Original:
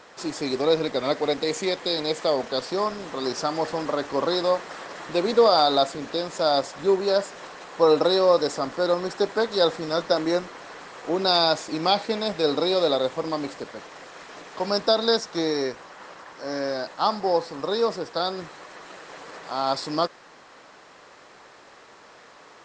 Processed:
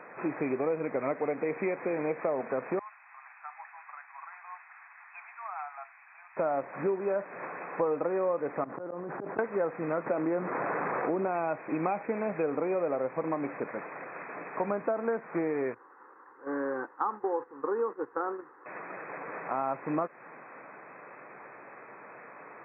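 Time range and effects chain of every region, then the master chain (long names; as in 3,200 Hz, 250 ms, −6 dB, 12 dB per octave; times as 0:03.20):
0:02.79–0:06.37: Butterworth high-pass 740 Hz 72 dB per octave + first difference
0:08.64–0:09.39: low-pass filter 1,300 Hz + volume swells 773 ms + envelope flattener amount 100%
0:10.06–0:11.28: running median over 15 samples + high-shelf EQ 4,400 Hz −10.5 dB + envelope flattener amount 50%
0:15.74–0:18.66: noise gate −32 dBFS, range −10 dB + low-shelf EQ 99 Hz −6 dB + phaser with its sweep stopped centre 640 Hz, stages 6
whole clip: brick-wall band-pass 110–2,600 Hz; downward compressor 5 to 1, threshold −29 dBFS; level +1.5 dB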